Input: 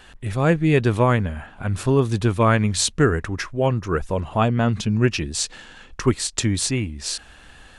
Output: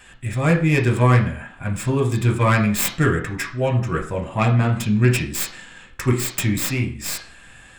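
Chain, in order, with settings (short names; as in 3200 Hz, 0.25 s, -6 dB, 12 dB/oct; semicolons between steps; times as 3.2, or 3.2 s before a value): tracing distortion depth 0.33 ms; reverb RT60 0.45 s, pre-delay 3 ms, DRR 1.5 dB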